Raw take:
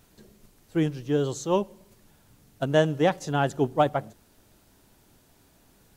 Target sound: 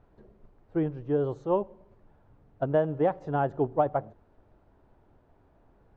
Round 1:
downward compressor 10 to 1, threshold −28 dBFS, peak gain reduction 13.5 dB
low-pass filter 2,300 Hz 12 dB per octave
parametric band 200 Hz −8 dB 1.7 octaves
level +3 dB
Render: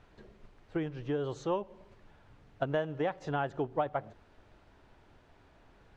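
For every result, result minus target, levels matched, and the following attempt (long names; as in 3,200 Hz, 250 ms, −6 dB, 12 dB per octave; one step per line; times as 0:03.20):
downward compressor: peak gain reduction +8.5 dB; 2,000 Hz band +8.0 dB
downward compressor 10 to 1, threshold −18.5 dBFS, peak gain reduction 5 dB
low-pass filter 2,300 Hz 12 dB per octave
parametric band 200 Hz −8 dB 1.7 octaves
level +3 dB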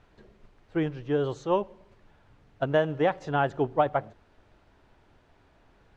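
2,000 Hz band +8.0 dB
downward compressor 10 to 1, threshold −18.5 dBFS, peak gain reduction 5 dB
low-pass filter 940 Hz 12 dB per octave
parametric band 200 Hz −8 dB 1.7 octaves
level +3 dB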